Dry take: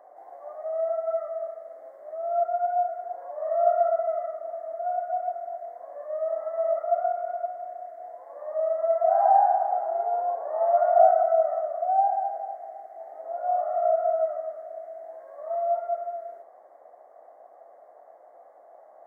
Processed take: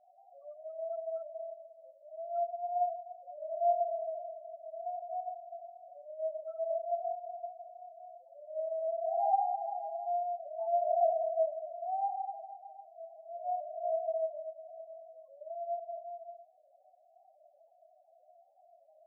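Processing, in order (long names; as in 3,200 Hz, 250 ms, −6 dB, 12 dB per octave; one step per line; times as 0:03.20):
multi-voice chorus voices 4, 0.13 Hz, delay 26 ms, depth 2.8 ms
spectral peaks only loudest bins 4
level −6.5 dB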